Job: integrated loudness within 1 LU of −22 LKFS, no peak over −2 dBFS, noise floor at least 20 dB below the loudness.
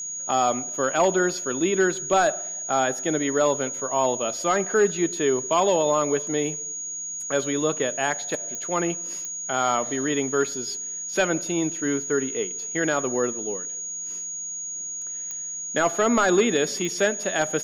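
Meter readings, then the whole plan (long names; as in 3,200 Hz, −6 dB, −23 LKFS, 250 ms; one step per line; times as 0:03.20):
number of clicks 4; interfering tone 6,700 Hz; level of the tone −30 dBFS; integrated loudness −24.0 LKFS; sample peak −11.0 dBFS; target loudness −22.0 LKFS
→ click removal
notch filter 6,700 Hz, Q 30
level +2 dB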